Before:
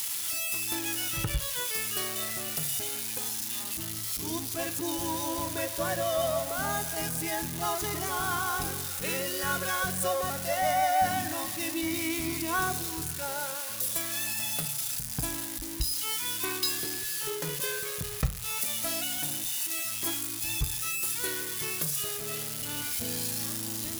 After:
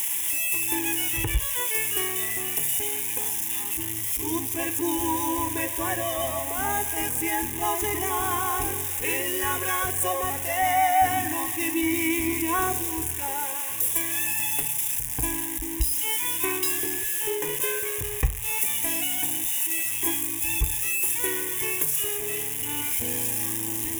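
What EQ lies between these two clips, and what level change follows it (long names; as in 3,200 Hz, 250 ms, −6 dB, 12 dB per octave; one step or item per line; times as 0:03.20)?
phaser with its sweep stopped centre 900 Hz, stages 8
+7.5 dB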